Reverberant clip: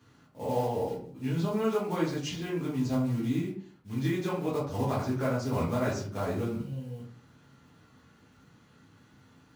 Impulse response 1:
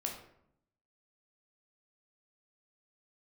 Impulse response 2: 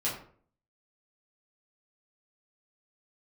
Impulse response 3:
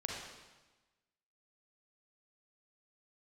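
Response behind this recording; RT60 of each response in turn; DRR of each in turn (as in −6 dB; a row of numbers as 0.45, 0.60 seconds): 2; 0.70, 0.50, 1.2 seconds; 0.5, −8.0, −2.0 decibels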